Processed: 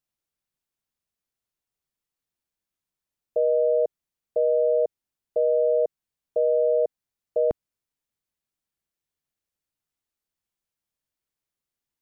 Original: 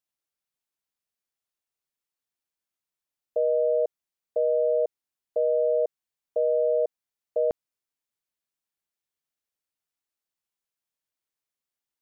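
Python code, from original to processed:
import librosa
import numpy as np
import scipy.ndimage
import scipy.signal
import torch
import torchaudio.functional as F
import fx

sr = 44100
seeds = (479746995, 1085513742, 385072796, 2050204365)

y = fx.low_shelf(x, sr, hz=270.0, db=10.0)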